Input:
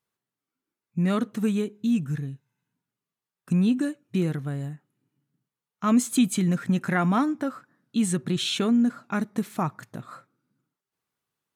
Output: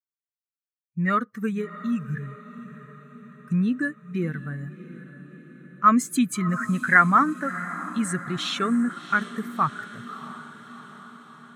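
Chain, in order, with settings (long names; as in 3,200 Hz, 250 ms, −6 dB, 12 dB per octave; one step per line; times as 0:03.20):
spectral dynamics exaggerated over time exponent 1.5
flat-topped bell 1,500 Hz +14.5 dB 1.1 octaves
feedback delay with all-pass diffusion 671 ms, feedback 60%, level −15 dB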